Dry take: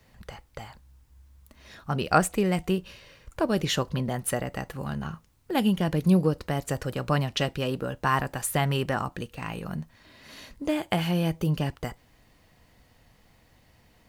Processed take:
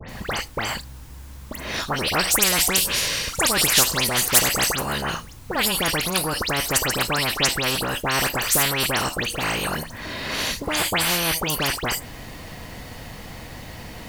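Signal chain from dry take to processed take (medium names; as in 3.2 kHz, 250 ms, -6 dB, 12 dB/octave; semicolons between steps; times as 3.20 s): 2.33–4.67 s: peaking EQ 8 kHz +14.5 dB 2.7 oct; phase dispersion highs, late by 91 ms, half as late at 2.7 kHz; spectrum-flattening compressor 4:1; trim +1 dB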